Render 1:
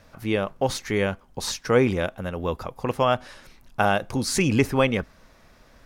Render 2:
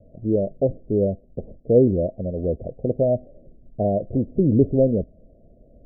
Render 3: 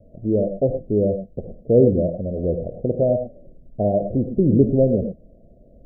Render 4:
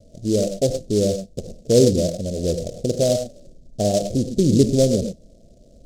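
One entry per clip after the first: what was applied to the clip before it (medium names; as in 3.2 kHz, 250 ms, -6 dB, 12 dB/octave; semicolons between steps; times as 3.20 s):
steep low-pass 670 Hz 96 dB/octave; trim +4 dB
gated-style reverb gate 130 ms rising, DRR 7.5 dB; trim +1 dB
delay time shaken by noise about 5.5 kHz, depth 0.065 ms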